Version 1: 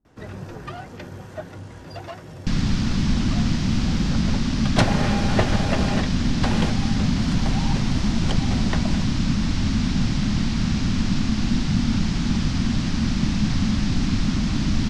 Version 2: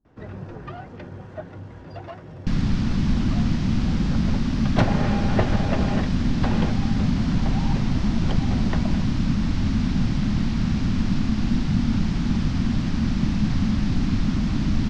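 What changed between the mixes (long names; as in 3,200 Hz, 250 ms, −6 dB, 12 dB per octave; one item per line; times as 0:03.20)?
second sound: remove high-frequency loss of the air 76 metres
master: add head-to-tape spacing loss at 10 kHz 22 dB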